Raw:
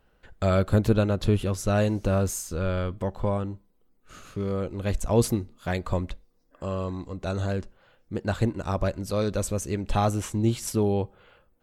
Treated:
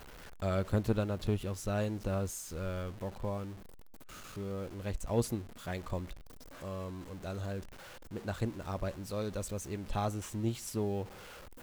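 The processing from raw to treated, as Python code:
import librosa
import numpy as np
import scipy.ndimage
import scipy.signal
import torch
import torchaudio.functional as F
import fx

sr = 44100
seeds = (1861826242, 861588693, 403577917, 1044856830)

y = x + 0.5 * 10.0 ** (-26.5 / 20.0) * np.sign(x)
y = fx.power_curve(y, sr, exponent=1.4)
y = y * librosa.db_to_amplitude(-8.0)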